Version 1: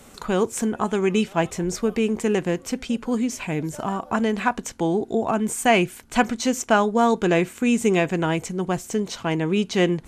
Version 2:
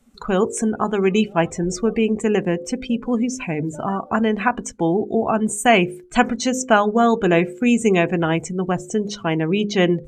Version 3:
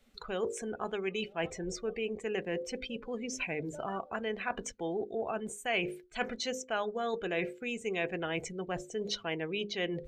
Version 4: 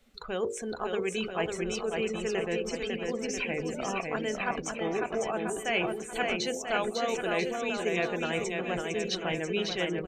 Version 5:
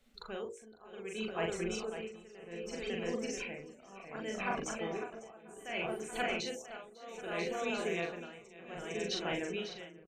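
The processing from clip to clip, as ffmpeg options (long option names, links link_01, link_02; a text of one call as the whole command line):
ffmpeg -i in.wav -af "bandreject=frequency=940:width=24,bandreject=frequency=51.44:width_type=h:width=4,bandreject=frequency=102.88:width_type=h:width=4,bandreject=frequency=154.32:width_type=h:width=4,bandreject=frequency=205.76:width_type=h:width=4,bandreject=frequency=257.2:width_type=h:width=4,bandreject=frequency=308.64:width_type=h:width=4,bandreject=frequency=360.08:width_type=h:width=4,bandreject=frequency=411.52:width_type=h:width=4,bandreject=frequency=462.96:width_type=h:width=4,bandreject=frequency=514.4:width_type=h:width=4,bandreject=frequency=565.84:width_type=h:width=4,afftdn=noise_reduction=21:noise_floor=-36,volume=3.5dB" out.wav
ffmpeg -i in.wav -af "areverse,acompressor=threshold=-25dB:ratio=6,areverse,equalizer=frequency=125:width_type=o:width=1:gain=-7,equalizer=frequency=250:width_type=o:width=1:gain=-8,equalizer=frequency=500:width_type=o:width=1:gain=4,equalizer=frequency=1000:width_type=o:width=1:gain=-5,equalizer=frequency=2000:width_type=o:width=1:gain=4,equalizer=frequency=4000:width_type=o:width=1:gain=7,equalizer=frequency=8000:width_type=o:width=1:gain=-7,volume=-5dB" out.wav
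ffmpeg -i in.wav -af "aecho=1:1:550|990|1342|1624|1849:0.631|0.398|0.251|0.158|0.1,volume=2.5dB" out.wav
ffmpeg -i in.wav -filter_complex "[0:a]asplit=2[link_01][link_02];[link_02]adelay=41,volume=-3dB[link_03];[link_01][link_03]amix=inputs=2:normalize=0,tremolo=f=0.65:d=0.9,volume=-5.5dB" out.wav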